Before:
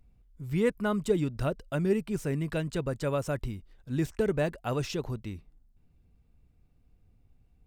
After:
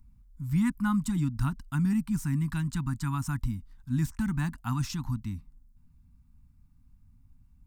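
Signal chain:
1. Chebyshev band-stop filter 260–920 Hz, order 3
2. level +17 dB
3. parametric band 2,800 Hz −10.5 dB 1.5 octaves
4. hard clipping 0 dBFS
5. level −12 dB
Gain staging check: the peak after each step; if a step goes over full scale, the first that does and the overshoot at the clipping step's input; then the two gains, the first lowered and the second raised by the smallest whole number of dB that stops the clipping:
−21.0, −4.0, −4.5, −4.5, −16.5 dBFS
no step passes full scale

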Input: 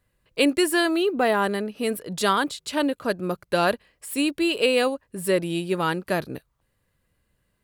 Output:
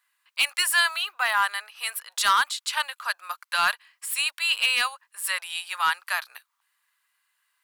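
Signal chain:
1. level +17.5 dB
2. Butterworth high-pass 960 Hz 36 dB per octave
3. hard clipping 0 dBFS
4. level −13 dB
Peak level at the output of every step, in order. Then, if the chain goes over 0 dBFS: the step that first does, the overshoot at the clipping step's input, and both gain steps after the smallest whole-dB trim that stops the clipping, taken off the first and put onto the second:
+11.0, +8.5, 0.0, −13.0 dBFS
step 1, 8.5 dB
step 1 +8.5 dB, step 4 −4 dB

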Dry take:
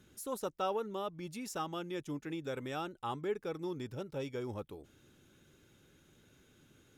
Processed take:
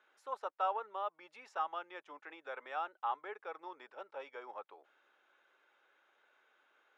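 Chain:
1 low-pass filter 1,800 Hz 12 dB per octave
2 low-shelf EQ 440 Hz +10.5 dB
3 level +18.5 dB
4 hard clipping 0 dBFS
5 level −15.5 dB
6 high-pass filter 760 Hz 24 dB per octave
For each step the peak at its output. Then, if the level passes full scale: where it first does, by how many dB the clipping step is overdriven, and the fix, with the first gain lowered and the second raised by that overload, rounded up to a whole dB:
−23.5, −20.0, −1.5, −1.5, −17.0, −22.0 dBFS
no step passes full scale

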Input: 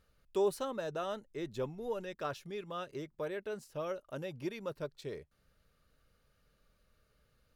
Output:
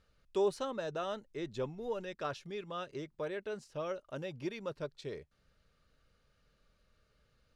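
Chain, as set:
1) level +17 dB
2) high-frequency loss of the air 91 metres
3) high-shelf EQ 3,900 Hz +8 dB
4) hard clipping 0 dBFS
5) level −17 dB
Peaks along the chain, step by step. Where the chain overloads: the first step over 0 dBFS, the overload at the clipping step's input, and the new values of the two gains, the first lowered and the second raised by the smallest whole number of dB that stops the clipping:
−5.5, −5.5, −5.5, −5.5, −22.5 dBFS
no step passes full scale

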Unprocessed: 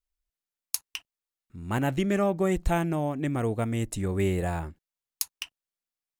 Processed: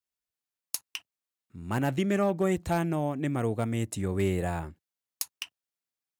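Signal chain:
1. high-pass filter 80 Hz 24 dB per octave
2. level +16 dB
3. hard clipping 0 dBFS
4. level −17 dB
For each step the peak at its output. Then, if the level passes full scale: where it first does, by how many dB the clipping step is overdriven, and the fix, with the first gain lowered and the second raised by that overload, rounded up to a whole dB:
−6.5, +9.5, 0.0, −17.0 dBFS
step 2, 9.5 dB
step 2 +6 dB, step 4 −7 dB

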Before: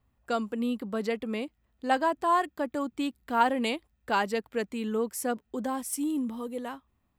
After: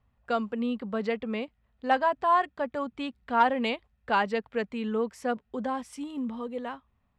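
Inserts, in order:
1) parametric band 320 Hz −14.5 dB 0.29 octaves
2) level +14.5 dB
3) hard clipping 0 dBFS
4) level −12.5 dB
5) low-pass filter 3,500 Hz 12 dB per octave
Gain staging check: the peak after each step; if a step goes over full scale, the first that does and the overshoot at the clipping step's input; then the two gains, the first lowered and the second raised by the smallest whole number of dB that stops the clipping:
−11.0, +3.5, 0.0, −12.5, −12.0 dBFS
step 2, 3.5 dB
step 2 +10.5 dB, step 4 −8.5 dB

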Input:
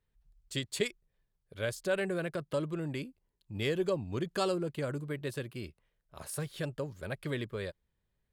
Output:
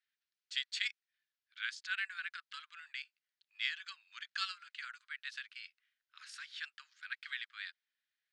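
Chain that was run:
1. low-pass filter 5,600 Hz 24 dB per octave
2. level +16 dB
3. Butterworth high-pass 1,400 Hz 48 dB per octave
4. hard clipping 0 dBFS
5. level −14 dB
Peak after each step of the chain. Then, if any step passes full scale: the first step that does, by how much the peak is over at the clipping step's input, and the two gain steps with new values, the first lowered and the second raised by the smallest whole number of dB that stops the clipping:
−17.0, −1.0, −4.0, −4.0, −18.0 dBFS
no step passes full scale

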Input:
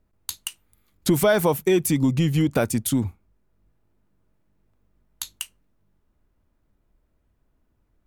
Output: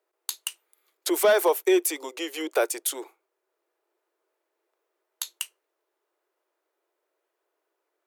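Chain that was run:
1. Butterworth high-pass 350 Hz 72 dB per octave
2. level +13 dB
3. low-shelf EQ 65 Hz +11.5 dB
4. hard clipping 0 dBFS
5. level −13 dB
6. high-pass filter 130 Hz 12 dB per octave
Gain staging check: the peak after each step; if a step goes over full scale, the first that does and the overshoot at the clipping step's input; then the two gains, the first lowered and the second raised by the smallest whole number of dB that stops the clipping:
−9.0, +4.0, +4.0, 0.0, −13.0, −11.0 dBFS
step 2, 4.0 dB
step 2 +9 dB, step 5 −9 dB

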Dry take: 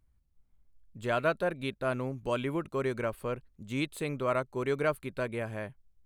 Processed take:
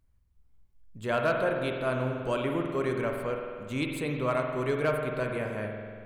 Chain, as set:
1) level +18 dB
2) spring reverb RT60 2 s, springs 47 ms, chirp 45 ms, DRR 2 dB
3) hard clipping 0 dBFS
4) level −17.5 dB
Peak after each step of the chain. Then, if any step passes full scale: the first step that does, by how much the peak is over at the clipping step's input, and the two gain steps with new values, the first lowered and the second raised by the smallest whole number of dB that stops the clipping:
+4.0, +4.5, 0.0, −17.5 dBFS
step 1, 4.5 dB
step 1 +13 dB, step 4 −12.5 dB

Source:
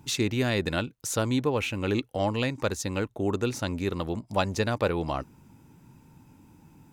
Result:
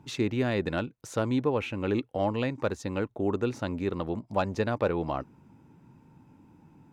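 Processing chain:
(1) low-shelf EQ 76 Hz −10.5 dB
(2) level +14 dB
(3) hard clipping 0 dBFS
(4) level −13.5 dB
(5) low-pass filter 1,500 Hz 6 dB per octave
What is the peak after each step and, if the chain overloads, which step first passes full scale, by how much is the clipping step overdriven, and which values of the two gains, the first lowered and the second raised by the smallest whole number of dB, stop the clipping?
−9.0, +5.0, 0.0, −13.5, −13.5 dBFS
step 2, 5.0 dB
step 2 +9 dB, step 4 −8.5 dB

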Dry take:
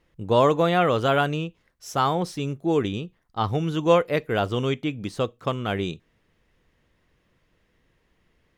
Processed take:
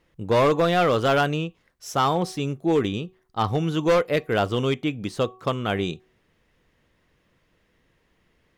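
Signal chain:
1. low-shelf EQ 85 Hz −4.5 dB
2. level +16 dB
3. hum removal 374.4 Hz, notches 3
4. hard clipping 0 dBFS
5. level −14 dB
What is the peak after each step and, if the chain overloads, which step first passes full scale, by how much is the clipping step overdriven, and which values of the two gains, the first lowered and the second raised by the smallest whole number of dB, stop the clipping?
−6.0, +10.0, +10.0, 0.0, −14.0 dBFS
step 2, 10.0 dB
step 2 +6 dB, step 5 −4 dB

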